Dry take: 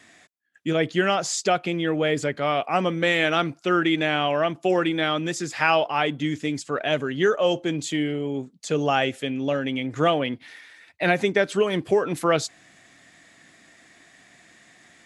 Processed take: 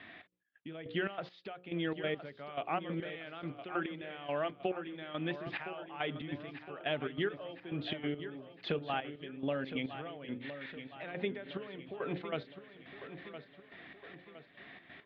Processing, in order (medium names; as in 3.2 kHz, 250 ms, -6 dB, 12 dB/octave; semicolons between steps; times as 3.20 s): steep low-pass 3.7 kHz 48 dB/octave; hum notches 60/120/180/240/300/360/420/480/540 Hz; compression 4:1, threshold -35 dBFS, peak gain reduction 16.5 dB; trance gate "xx.x...." 140 bpm -12 dB; feedback delay 1013 ms, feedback 50%, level -11 dB; trim +1.5 dB